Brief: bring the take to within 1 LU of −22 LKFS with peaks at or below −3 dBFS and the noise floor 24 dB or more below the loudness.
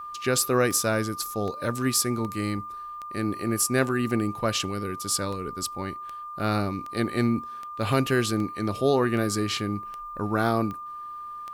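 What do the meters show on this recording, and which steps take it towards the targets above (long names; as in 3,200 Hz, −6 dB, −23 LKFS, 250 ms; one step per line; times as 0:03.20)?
number of clicks 15; interfering tone 1,200 Hz; level of the tone −35 dBFS; integrated loudness −26.5 LKFS; sample peak −11.5 dBFS; target loudness −22.0 LKFS
→ click removal
notch filter 1,200 Hz, Q 30
level +4.5 dB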